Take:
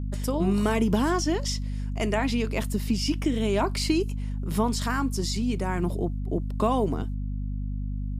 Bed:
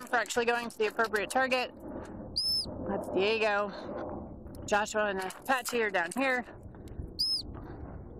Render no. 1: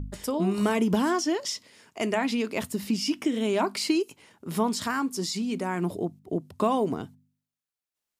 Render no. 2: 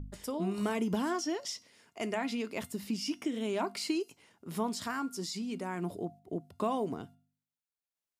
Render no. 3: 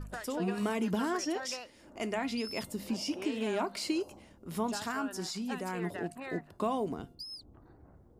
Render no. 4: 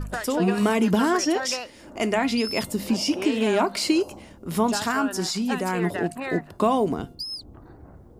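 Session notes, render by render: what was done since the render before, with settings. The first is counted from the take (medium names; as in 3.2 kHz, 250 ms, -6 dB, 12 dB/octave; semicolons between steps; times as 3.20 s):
de-hum 50 Hz, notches 5
feedback comb 700 Hz, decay 0.39 s, mix 60%
add bed -14 dB
trim +11 dB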